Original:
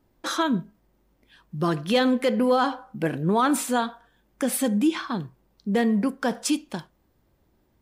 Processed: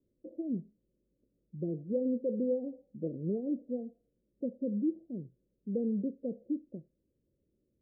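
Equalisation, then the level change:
Butterworth low-pass 570 Hz 72 dB per octave
low-shelf EQ 77 Hz −10 dB
−9.0 dB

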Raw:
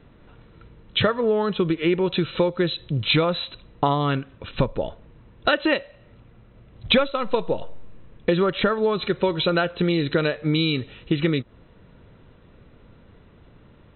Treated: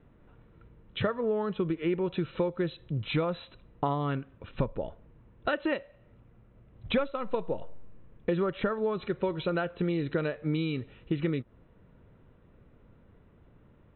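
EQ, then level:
high-frequency loss of the air 410 metres
−7.0 dB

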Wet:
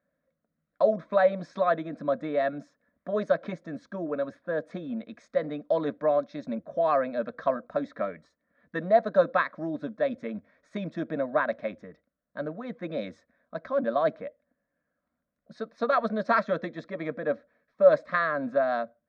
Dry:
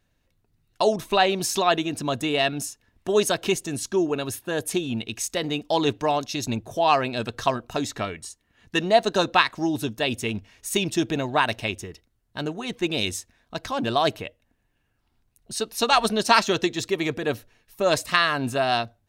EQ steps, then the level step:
loudspeaker in its box 120–3,000 Hz, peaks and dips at 160 Hz +4 dB, 560 Hz +10 dB, 880 Hz +3 dB
phaser with its sweep stopped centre 570 Hz, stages 8
−4.0 dB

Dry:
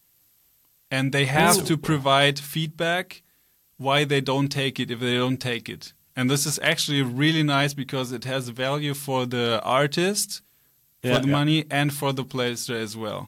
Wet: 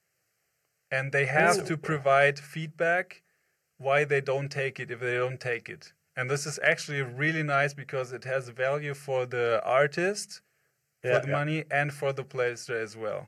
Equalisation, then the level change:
band-pass filter 160–5,000 Hz
phaser with its sweep stopped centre 970 Hz, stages 6
0.0 dB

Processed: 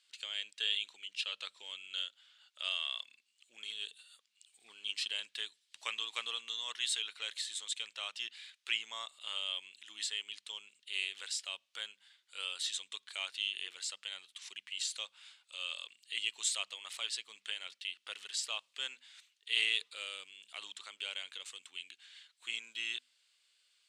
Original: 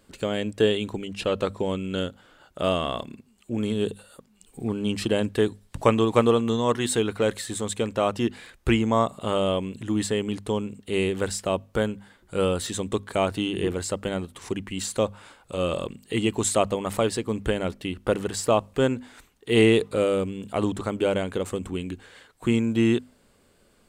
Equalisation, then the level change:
four-pole ladder band-pass 4,100 Hz, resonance 30%
+8.0 dB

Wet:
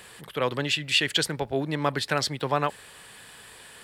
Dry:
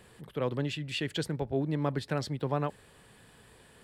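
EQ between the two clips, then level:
tilt shelving filter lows −7.5 dB, about 650 Hz
+6.5 dB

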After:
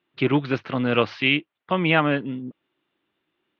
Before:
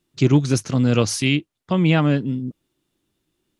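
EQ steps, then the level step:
high-pass filter 1,200 Hz 6 dB per octave
low-pass filter 3,400 Hz 24 dB per octave
high-frequency loss of the air 280 metres
+9.0 dB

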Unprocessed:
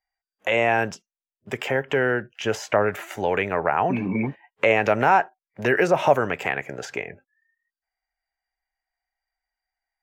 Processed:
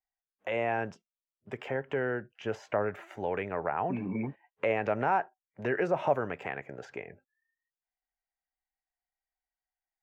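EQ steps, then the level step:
low-pass filter 1,500 Hz 6 dB per octave
−8.5 dB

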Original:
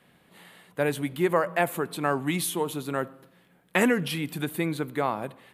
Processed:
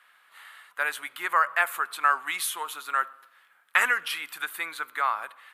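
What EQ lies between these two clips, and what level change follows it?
high-pass with resonance 1,300 Hz, resonance Q 3.1
0.0 dB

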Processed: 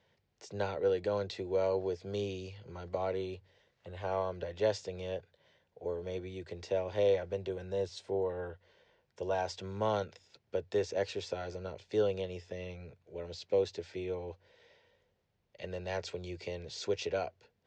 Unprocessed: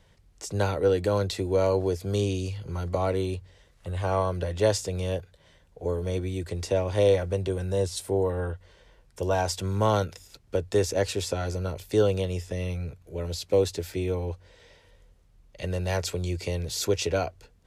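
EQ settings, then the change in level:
high-frequency loss of the air 110 metres
loudspeaker in its box 160–7,200 Hz, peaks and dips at 170 Hz −5 dB, 280 Hz −8 dB, 1,200 Hz −6 dB
−6.0 dB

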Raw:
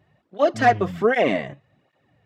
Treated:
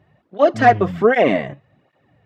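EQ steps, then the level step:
high-shelf EQ 3,900 Hz −9 dB
+5.0 dB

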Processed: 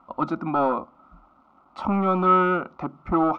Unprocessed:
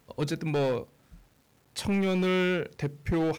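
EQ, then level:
low-pass with resonance 1,300 Hz, resonance Q 10
low-shelf EQ 180 Hz −8.5 dB
phaser with its sweep stopped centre 450 Hz, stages 6
+9.0 dB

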